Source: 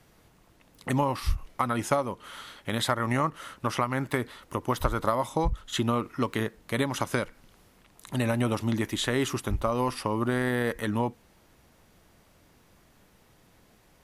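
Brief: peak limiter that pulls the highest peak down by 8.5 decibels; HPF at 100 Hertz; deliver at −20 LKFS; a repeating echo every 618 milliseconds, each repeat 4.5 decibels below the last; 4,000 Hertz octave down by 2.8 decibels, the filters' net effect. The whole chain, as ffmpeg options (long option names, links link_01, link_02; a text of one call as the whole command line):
ffmpeg -i in.wav -af "highpass=100,equalizer=frequency=4000:width_type=o:gain=-3.5,alimiter=limit=-16.5dB:level=0:latency=1,aecho=1:1:618|1236|1854|2472|3090|3708|4326|4944|5562:0.596|0.357|0.214|0.129|0.0772|0.0463|0.0278|0.0167|0.01,volume=10.5dB" out.wav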